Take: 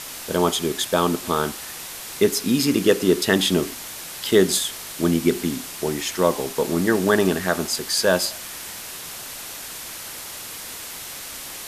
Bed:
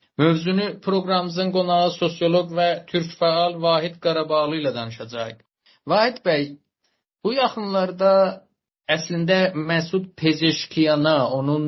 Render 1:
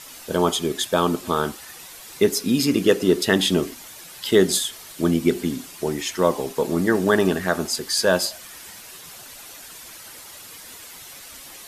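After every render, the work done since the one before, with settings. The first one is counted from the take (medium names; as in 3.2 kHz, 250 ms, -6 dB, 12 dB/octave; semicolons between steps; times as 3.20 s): noise reduction 9 dB, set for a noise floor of -36 dBFS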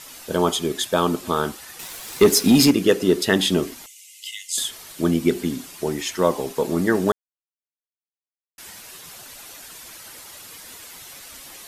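1.79–2.71 s: waveshaping leveller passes 2; 3.86–4.58 s: rippled Chebyshev high-pass 2 kHz, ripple 9 dB; 7.12–8.58 s: mute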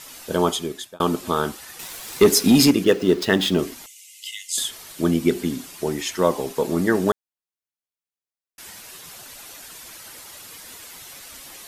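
0.45–1.00 s: fade out; 2.84–3.59 s: median filter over 5 samples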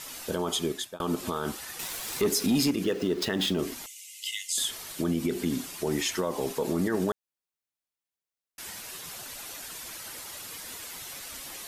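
compression 3:1, threshold -20 dBFS, peak gain reduction 8.5 dB; peak limiter -18 dBFS, peak gain reduction 10.5 dB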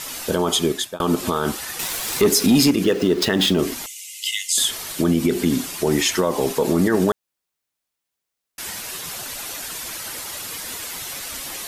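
trim +9.5 dB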